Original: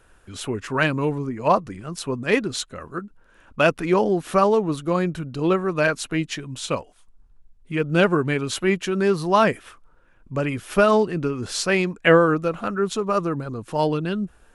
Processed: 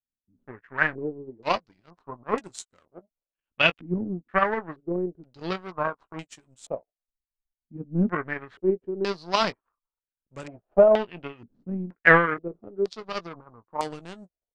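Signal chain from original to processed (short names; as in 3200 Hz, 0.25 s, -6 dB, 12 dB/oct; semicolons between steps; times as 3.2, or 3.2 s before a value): power-law curve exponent 2; doubler 17 ms -13 dB; stepped low-pass 2.1 Hz 240–7800 Hz; gain -1.5 dB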